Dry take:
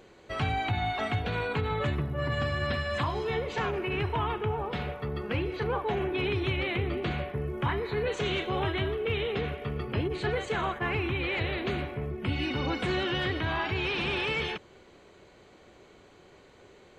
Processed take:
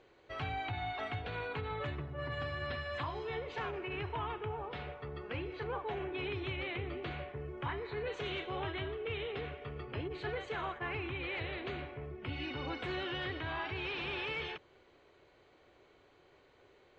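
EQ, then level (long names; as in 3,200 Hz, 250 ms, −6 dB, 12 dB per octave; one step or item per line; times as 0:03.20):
low-pass filter 4,500 Hz 12 dB per octave
parametric band 200 Hz −12.5 dB 0.28 octaves
low-shelf EQ 340 Hz −3 dB
−7.5 dB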